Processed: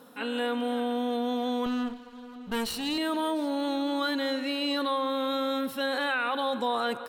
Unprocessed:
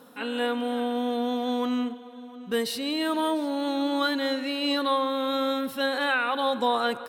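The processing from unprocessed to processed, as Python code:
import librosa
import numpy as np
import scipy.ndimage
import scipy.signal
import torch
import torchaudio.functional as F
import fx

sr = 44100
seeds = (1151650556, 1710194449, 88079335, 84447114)

p1 = fx.lower_of_two(x, sr, delay_ms=0.7, at=(1.66, 2.98))
p2 = fx.over_compress(p1, sr, threshold_db=-28.0, ratio=-1.0)
p3 = p1 + F.gain(torch.from_numpy(p2), -2.5).numpy()
y = F.gain(torch.from_numpy(p3), -6.5).numpy()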